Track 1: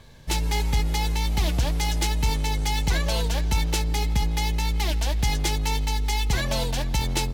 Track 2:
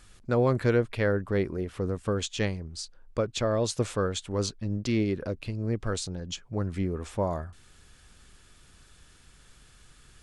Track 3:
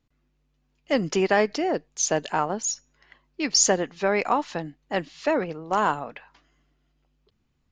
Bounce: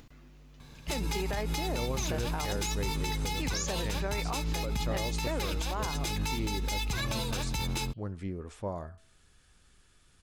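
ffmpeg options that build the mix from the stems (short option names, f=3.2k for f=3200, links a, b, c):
-filter_complex "[0:a]lowshelf=f=91:g=-10.5,aecho=1:1:0.8:0.43,adelay=600,volume=-2.5dB[a];[1:a]bandreject=f=218.3:t=h:w=4,bandreject=f=436.6:t=h:w=4,bandreject=f=654.9:t=h:w=4,bandreject=f=873.2:t=h:w=4,bandreject=f=1.0915k:t=h:w=4,bandreject=f=1.3098k:t=h:w=4,bandreject=f=1.5281k:t=h:w=4,bandreject=f=1.7464k:t=h:w=4,bandreject=f=1.9647k:t=h:w=4,bandreject=f=2.183k:t=h:w=4,bandreject=f=2.4013k:t=h:w=4,bandreject=f=2.6196k:t=h:w=4,bandreject=f=2.8379k:t=h:w=4,bandreject=f=3.0562k:t=h:w=4,bandreject=f=3.2745k:t=h:w=4,bandreject=f=3.4928k:t=h:w=4,bandreject=f=3.7111k:t=h:w=4,bandreject=f=3.9294k:t=h:w=4,bandreject=f=4.1477k:t=h:w=4,bandreject=f=4.366k:t=h:w=4,bandreject=f=4.5843k:t=h:w=4,bandreject=f=4.8026k:t=h:w=4,bandreject=f=5.0209k:t=h:w=4,adelay=1450,volume=-7.5dB[b];[2:a]acompressor=mode=upward:threshold=-25dB:ratio=2.5,volume=-8.5dB[c];[a][b][c]amix=inputs=3:normalize=0,alimiter=limit=-23dB:level=0:latency=1:release=72"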